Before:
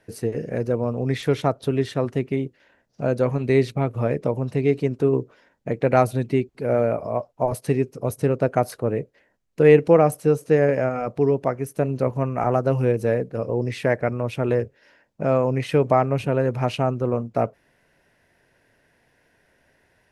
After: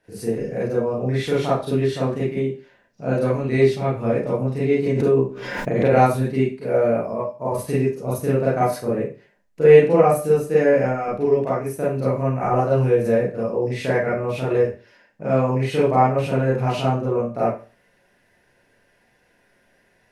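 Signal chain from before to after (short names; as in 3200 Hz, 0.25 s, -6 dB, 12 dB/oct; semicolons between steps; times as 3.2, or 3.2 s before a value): 7.08–7.55 notch comb 740 Hz; reverb RT60 0.35 s, pre-delay 31 ms, DRR -9 dB; 4.86–6.17 backwards sustainer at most 38 dB/s; gain -7.5 dB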